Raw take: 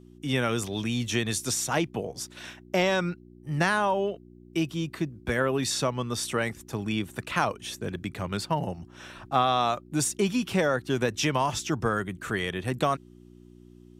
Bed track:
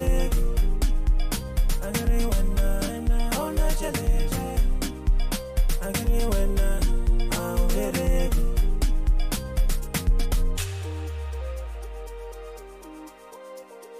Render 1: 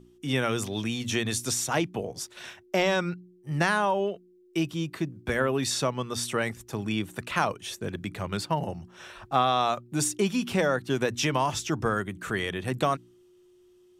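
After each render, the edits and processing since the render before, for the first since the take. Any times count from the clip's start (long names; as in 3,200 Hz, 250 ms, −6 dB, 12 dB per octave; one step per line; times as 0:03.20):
hum removal 60 Hz, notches 5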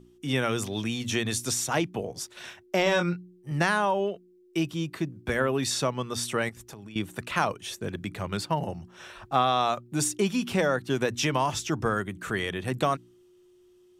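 0:02.84–0:03.52: double-tracking delay 23 ms −5.5 dB
0:06.49–0:06.96: downward compressor 12 to 1, threshold −40 dBFS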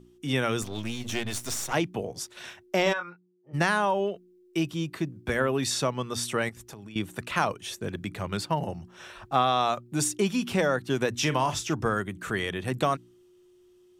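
0:00.62–0:01.73: gain on one half-wave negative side −12 dB
0:02.92–0:03.53: resonant band-pass 1,400 Hz → 530 Hz, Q 2.5
0:11.15–0:11.74: double-tracking delay 40 ms −12 dB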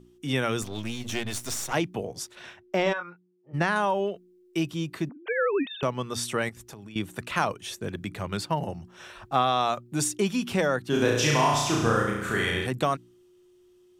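0:02.35–0:03.76: low-pass filter 2,800 Hz 6 dB per octave
0:05.09–0:05.83: three sine waves on the formant tracks
0:10.89–0:12.67: flutter between parallel walls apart 5.9 metres, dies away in 0.99 s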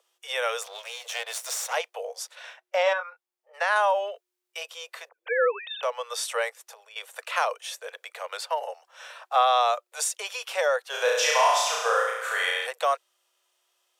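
Butterworth high-pass 470 Hz 96 dB per octave
harmonic and percussive parts rebalanced harmonic +4 dB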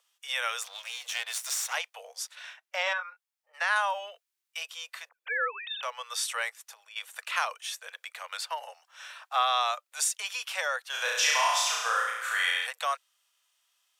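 high-pass filter 1,200 Hz 12 dB per octave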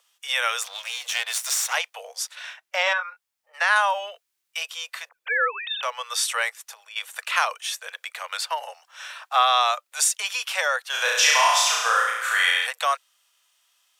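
level +7 dB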